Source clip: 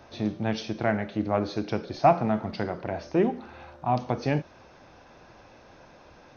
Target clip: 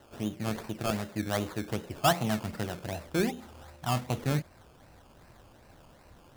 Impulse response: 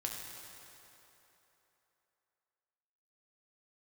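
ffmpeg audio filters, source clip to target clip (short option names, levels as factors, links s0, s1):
-af "asubboost=boost=2:cutoff=210,acrusher=samples=18:mix=1:aa=0.000001:lfo=1:lforange=10.8:lforate=2.6,volume=0.562"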